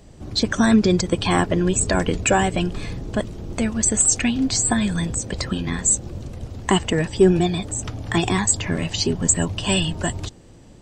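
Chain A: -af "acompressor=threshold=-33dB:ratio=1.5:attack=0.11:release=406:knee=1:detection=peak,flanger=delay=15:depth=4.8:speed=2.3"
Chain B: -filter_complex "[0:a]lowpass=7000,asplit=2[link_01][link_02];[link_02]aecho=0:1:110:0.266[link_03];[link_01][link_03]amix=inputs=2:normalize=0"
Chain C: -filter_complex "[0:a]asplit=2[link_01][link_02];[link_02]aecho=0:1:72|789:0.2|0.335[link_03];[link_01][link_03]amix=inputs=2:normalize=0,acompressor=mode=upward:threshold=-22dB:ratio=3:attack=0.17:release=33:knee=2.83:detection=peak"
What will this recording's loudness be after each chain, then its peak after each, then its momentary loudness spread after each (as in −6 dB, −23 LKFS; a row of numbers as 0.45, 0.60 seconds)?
−31.5, −21.0, −20.0 LKFS; −15.5, −4.5, −4.0 dBFS; 9, 11, 9 LU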